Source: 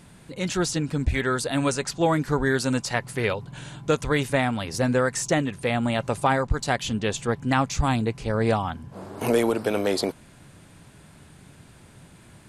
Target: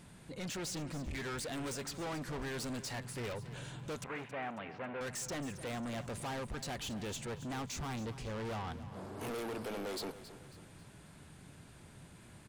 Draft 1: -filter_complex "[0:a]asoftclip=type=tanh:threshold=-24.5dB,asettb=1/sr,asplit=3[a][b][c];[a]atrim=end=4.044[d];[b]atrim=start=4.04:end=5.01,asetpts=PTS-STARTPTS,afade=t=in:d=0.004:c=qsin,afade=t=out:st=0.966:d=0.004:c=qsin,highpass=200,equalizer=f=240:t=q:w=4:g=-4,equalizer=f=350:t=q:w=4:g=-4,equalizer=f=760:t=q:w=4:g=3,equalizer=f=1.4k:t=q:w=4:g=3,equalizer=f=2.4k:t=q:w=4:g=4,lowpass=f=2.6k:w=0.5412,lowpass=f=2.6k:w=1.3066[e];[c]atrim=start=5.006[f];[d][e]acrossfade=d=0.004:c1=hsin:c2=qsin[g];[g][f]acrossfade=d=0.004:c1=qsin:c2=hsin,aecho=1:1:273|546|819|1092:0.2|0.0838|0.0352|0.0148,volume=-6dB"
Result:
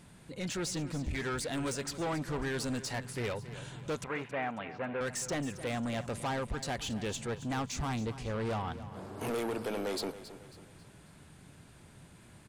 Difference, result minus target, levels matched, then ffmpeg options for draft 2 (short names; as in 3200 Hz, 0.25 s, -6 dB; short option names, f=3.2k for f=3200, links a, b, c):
soft clip: distortion -4 dB
-filter_complex "[0:a]asoftclip=type=tanh:threshold=-32dB,asettb=1/sr,asplit=3[a][b][c];[a]atrim=end=4.044[d];[b]atrim=start=4.04:end=5.01,asetpts=PTS-STARTPTS,afade=t=in:d=0.004:c=qsin,afade=t=out:st=0.966:d=0.004:c=qsin,highpass=200,equalizer=f=240:t=q:w=4:g=-4,equalizer=f=350:t=q:w=4:g=-4,equalizer=f=760:t=q:w=4:g=3,equalizer=f=1.4k:t=q:w=4:g=3,equalizer=f=2.4k:t=q:w=4:g=4,lowpass=f=2.6k:w=0.5412,lowpass=f=2.6k:w=1.3066[e];[c]atrim=start=5.006[f];[d][e]acrossfade=d=0.004:c1=hsin:c2=qsin[g];[g][f]acrossfade=d=0.004:c1=qsin:c2=hsin,aecho=1:1:273|546|819|1092:0.2|0.0838|0.0352|0.0148,volume=-6dB"